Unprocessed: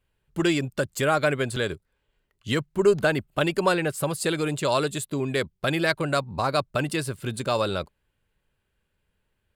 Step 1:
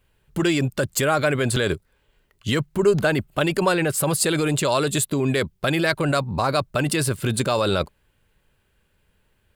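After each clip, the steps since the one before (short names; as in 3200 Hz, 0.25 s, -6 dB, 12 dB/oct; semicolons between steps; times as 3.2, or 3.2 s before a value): in parallel at -1.5 dB: negative-ratio compressor -29 dBFS, ratio -0.5; on the sum: high shelf 12000 Hz +3.5 dB; gain +1 dB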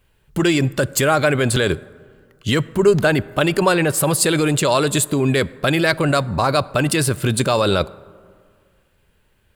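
plate-style reverb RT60 2 s, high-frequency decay 0.4×, DRR 19.5 dB; gain +4 dB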